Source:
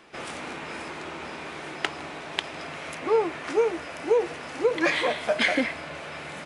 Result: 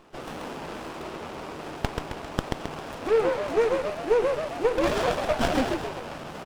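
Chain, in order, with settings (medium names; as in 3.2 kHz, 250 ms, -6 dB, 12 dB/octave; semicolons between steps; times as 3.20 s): frequency-shifting echo 133 ms, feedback 50%, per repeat +76 Hz, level -4 dB; sliding maximum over 17 samples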